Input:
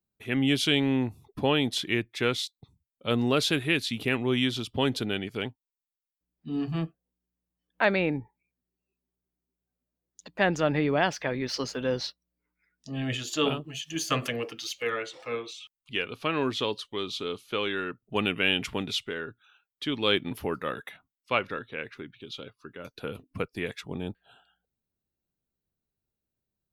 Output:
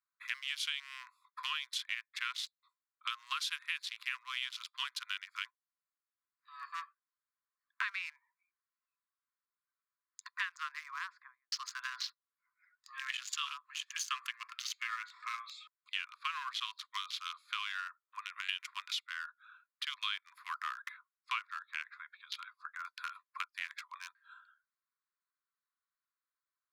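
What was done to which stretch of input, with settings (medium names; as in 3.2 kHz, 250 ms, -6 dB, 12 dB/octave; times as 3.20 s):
10.34–11.52 s: studio fade out
17.87–18.49 s: compression 20:1, threshold -35 dBFS
whole clip: local Wiener filter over 15 samples; Chebyshev high-pass 1 kHz, order 10; compression 4:1, threshold -48 dBFS; trim +10 dB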